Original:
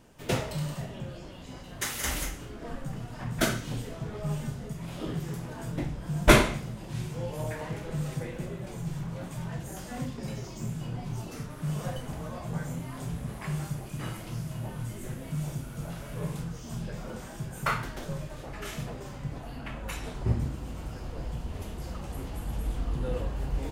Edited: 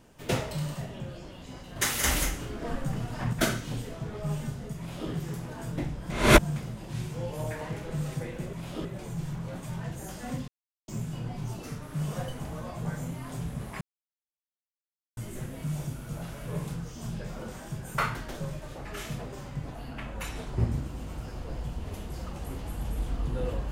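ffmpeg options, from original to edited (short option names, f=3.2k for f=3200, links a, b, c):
-filter_complex "[0:a]asplit=11[a][b][c][d][e][f][g][h][i][j][k];[a]atrim=end=1.762[l];[b]atrim=start=1.758:end=3.332,asetpts=PTS-STARTPTS,volume=5dB[m];[c]atrim=start=3.328:end=6.102[n];[d]atrim=start=6.098:end=6.562,asetpts=PTS-STARTPTS,areverse[o];[e]atrim=start=6.558:end=8.532[p];[f]atrim=start=4.778:end=5.102[q];[g]atrim=start=8.528:end=10.16,asetpts=PTS-STARTPTS,afade=t=out:st=1.628:d=0.004:c=hsin[r];[h]atrim=start=10.16:end=10.56,asetpts=PTS-STARTPTS,volume=0[s];[i]atrim=start=10.56:end=13.49,asetpts=PTS-STARTPTS,afade=t=in:d=0.004:c=hsin,afade=t=out:st=2.926:d=0.004:c=hsin[t];[j]atrim=start=13.49:end=14.85,asetpts=PTS-STARTPTS,volume=0[u];[k]atrim=start=14.85,asetpts=PTS-STARTPTS,afade=t=in:d=0.004:c=hsin[v];[l][m]acrossfade=d=0.004:c1=hsin:c2=hsin[w];[w][n]acrossfade=d=0.004:c1=hsin:c2=hsin[x];[x][o]acrossfade=d=0.004:c1=hsin:c2=hsin[y];[y][p]acrossfade=d=0.004:c1=hsin:c2=hsin[z];[z][q]acrossfade=d=0.004:c1=hsin:c2=hsin[aa];[r][s][t][u][v]concat=n=5:v=0:a=1[ab];[aa][ab]acrossfade=d=0.004:c1=hsin:c2=hsin"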